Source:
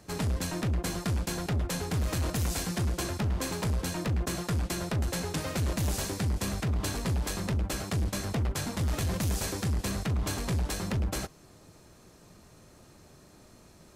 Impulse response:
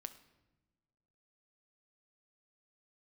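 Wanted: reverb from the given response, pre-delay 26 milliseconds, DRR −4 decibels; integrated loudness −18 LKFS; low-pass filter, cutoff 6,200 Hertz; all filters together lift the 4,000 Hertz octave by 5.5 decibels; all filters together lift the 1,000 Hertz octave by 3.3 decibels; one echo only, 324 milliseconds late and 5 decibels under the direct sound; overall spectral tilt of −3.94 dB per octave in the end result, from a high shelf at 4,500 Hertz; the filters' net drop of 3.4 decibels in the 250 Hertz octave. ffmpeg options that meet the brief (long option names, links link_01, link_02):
-filter_complex "[0:a]lowpass=6200,equalizer=frequency=250:width_type=o:gain=-5.5,equalizer=frequency=1000:width_type=o:gain=4,equalizer=frequency=4000:width_type=o:gain=4.5,highshelf=frequency=4500:gain=5.5,aecho=1:1:324:0.562,asplit=2[link_01][link_02];[1:a]atrim=start_sample=2205,adelay=26[link_03];[link_02][link_03]afir=irnorm=-1:irlink=0,volume=8.5dB[link_04];[link_01][link_04]amix=inputs=2:normalize=0,volume=6.5dB"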